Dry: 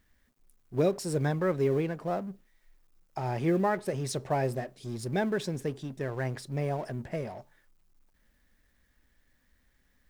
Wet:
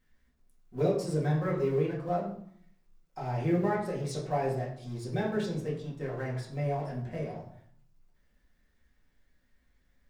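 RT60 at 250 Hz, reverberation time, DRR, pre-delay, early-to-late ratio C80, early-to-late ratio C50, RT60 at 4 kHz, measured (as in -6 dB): 0.80 s, 0.65 s, -5.5 dB, 4 ms, 9.5 dB, 6.5 dB, 0.45 s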